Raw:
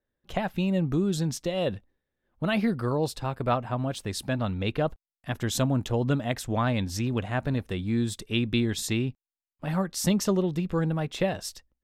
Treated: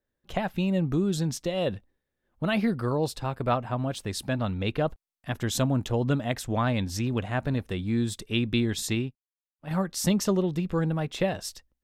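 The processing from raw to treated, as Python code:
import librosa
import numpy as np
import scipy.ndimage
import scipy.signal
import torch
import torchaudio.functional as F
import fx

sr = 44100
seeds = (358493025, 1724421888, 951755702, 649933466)

y = fx.upward_expand(x, sr, threshold_db=-38.0, expansion=2.5, at=(8.95, 9.71))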